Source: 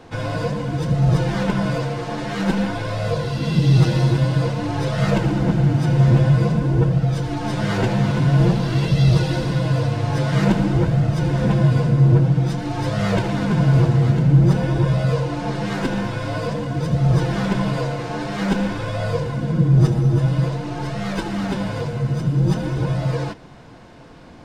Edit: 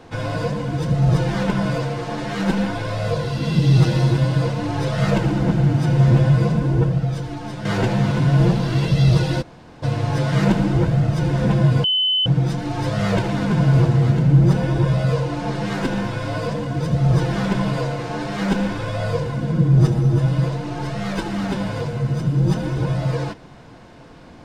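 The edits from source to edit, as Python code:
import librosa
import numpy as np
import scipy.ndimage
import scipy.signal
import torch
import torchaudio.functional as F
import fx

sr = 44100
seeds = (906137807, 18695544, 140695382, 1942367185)

y = fx.edit(x, sr, fx.fade_out_to(start_s=6.69, length_s=0.96, floor_db=-9.0),
    fx.room_tone_fill(start_s=9.42, length_s=0.41, crossfade_s=0.02),
    fx.bleep(start_s=11.84, length_s=0.42, hz=3030.0, db=-15.5), tone=tone)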